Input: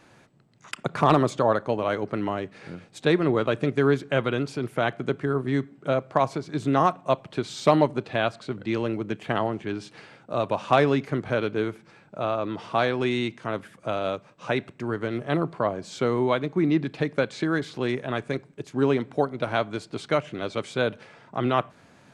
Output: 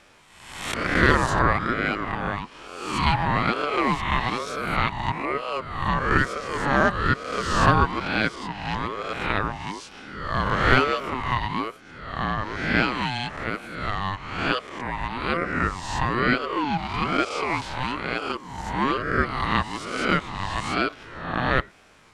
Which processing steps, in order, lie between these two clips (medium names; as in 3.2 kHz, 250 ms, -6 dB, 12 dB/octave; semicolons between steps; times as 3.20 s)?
reverse spectral sustain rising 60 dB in 0.97 s; tone controls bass -14 dB, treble +1 dB; ring modulator with a swept carrier 680 Hz, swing 30%, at 1.1 Hz; trim +3 dB